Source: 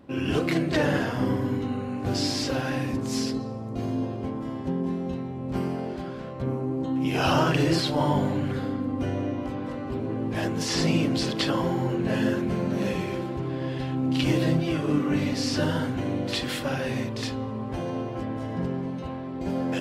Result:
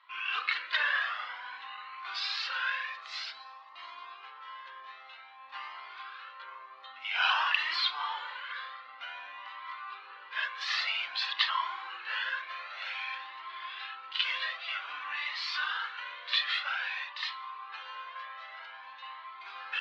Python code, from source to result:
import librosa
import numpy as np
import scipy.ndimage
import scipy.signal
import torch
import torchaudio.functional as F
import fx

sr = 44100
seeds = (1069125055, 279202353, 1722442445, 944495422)

y = scipy.signal.sosfilt(scipy.signal.ellip(3, 1.0, 70, [1100.0, 4000.0], 'bandpass', fs=sr, output='sos'), x)
y = fx.comb_cascade(y, sr, direction='rising', hz=0.52)
y = y * librosa.db_to_amplitude(7.5)